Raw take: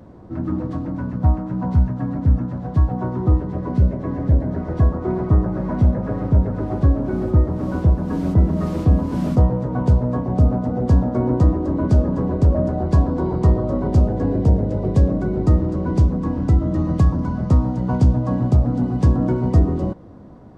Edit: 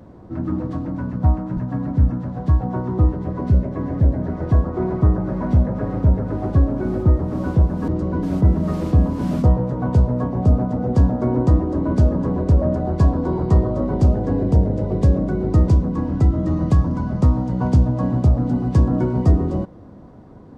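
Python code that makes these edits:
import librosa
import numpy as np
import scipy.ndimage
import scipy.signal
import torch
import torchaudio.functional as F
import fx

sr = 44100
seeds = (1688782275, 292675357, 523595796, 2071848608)

y = fx.edit(x, sr, fx.cut(start_s=1.57, length_s=0.28),
    fx.move(start_s=15.61, length_s=0.35, to_s=8.16), tone=tone)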